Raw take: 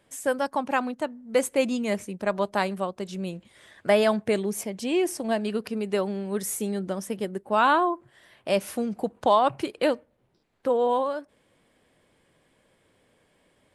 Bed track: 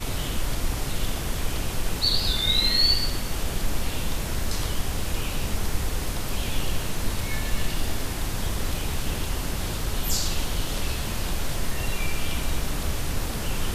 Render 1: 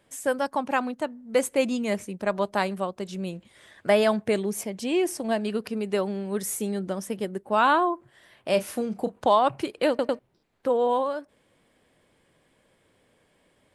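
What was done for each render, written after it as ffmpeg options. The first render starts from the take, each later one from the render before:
ffmpeg -i in.wav -filter_complex "[0:a]asettb=1/sr,asplit=3[link_01][link_02][link_03];[link_01]atrim=end=8.504[link_04];[link_02]atrim=start=8.5:end=9.14,asetpts=PTS-STARTPTS,afade=type=in:duration=0.004:curve=qsin,afade=type=out:start_time=0.636:duration=0.004:curve=qsin,asplit=2[link_05][link_06];[link_06]adelay=32,volume=-11dB[link_07];[link_05][link_07]amix=inputs=2:normalize=0,atrim=end_sample=28224[link_08];[link_03]atrim=start=9.136[link_09];[link_04][link_08]acrossfade=duration=0.004:curve1=hsin:curve2=qsin[link_10];[link_10][link_09]acrossfade=duration=0.004:curve1=qsin:curve2=hsin,asplit=4[link_11][link_12][link_13][link_14];[link_11]atrim=end=9.992[link_15];[link_12]atrim=start=9.888:end=9.992[link_16];[link_13]atrim=start=9.888:end=9.992[link_17];[link_14]atrim=start=10.188[link_18];[link_15][link_16]acrossfade=duration=0.004:curve1=hsin:curve2=hsin[link_19];[link_19][link_17]acrossfade=duration=0.004:curve1=hsin:curve2=hsin[link_20];[link_20][link_18]acrossfade=duration=0.004:curve1=hsin:curve2=hsin" out.wav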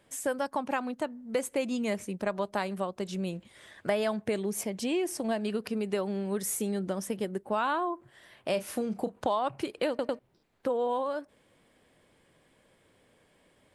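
ffmpeg -i in.wav -af "acompressor=threshold=-28dB:ratio=3" out.wav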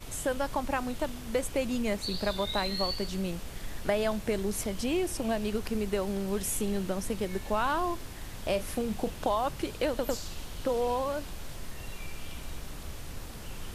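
ffmpeg -i in.wav -i bed.wav -filter_complex "[1:a]volume=-13.5dB[link_01];[0:a][link_01]amix=inputs=2:normalize=0" out.wav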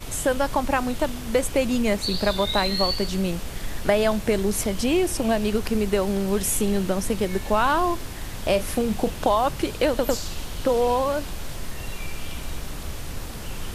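ffmpeg -i in.wav -af "volume=8dB" out.wav

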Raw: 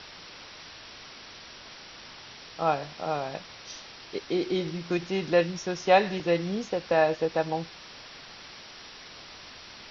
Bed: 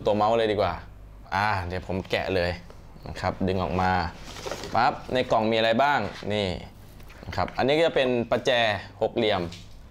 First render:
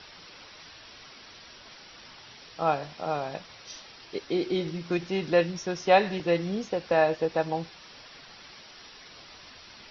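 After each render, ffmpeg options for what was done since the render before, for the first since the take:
ffmpeg -i in.wav -af "afftdn=noise_reduction=6:noise_floor=-47" out.wav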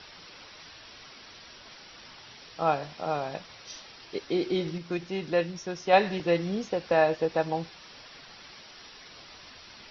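ffmpeg -i in.wav -filter_complex "[0:a]asplit=3[link_01][link_02][link_03];[link_01]atrim=end=4.782[link_04];[link_02]atrim=start=4.778:end=5.932,asetpts=PTS-STARTPTS,volume=-3.5dB[link_05];[link_03]atrim=start=5.928[link_06];[link_04][link_05]acrossfade=duration=0.004:curve1=hsin:curve2=hsin[link_07];[link_07][link_06]acrossfade=duration=0.004:curve1=hsin:curve2=hsin" out.wav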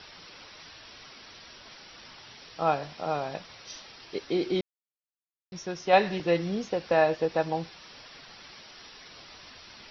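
ffmpeg -i in.wav -filter_complex "[0:a]asplit=3[link_01][link_02][link_03];[link_01]atrim=end=4.61,asetpts=PTS-STARTPTS,afade=type=out:start_time=4.606:duration=0.004:curve=hsin[link_04];[link_02]atrim=start=4.61:end=5.52,asetpts=PTS-STARTPTS,volume=0[link_05];[link_03]atrim=start=5.52,asetpts=PTS-STARTPTS,afade=type=in:duration=0.004:curve=hsin[link_06];[link_04][link_05][link_06]concat=n=3:v=0:a=1" out.wav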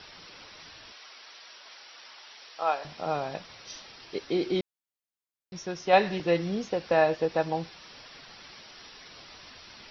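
ffmpeg -i in.wav -filter_complex "[0:a]asettb=1/sr,asplit=3[link_01][link_02][link_03];[link_01]atrim=end=0.924[link_04];[link_02]atrim=start=0.92:end=2.85,asetpts=PTS-STARTPTS,afade=type=in:duration=0.004:curve=qsin,afade=type=out:start_time=1.926:duration=0.004:curve=qsin,highpass=600[link_05];[link_03]atrim=start=2.846[link_06];[link_04][link_05]acrossfade=duration=0.004:curve1=hsin:curve2=qsin[link_07];[link_07][link_06]acrossfade=duration=0.004:curve1=qsin:curve2=hsin" out.wav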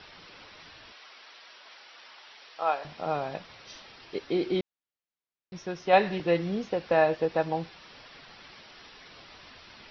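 ffmpeg -i in.wav -af "lowpass=4100" out.wav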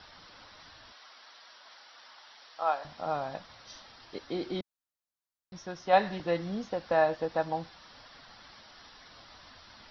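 ffmpeg -i in.wav -af "equalizer=frequency=160:width_type=o:width=0.67:gain=-5,equalizer=frequency=400:width_type=o:width=0.67:gain=-9,equalizer=frequency=2500:width_type=o:width=0.67:gain=-9" out.wav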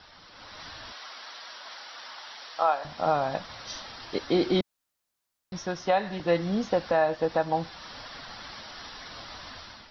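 ffmpeg -i in.wav -af "dynaudnorm=framelen=320:gausssize=3:maxgain=10.5dB,alimiter=limit=-13dB:level=0:latency=1:release=475" out.wav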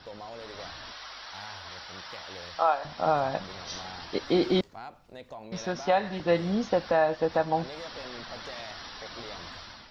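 ffmpeg -i in.wav -i bed.wav -filter_complex "[1:a]volume=-21dB[link_01];[0:a][link_01]amix=inputs=2:normalize=0" out.wav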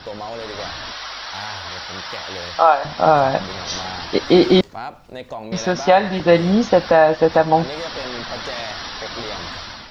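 ffmpeg -i in.wav -af "volume=12dB,alimiter=limit=-2dB:level=0:latency=1" out.wav

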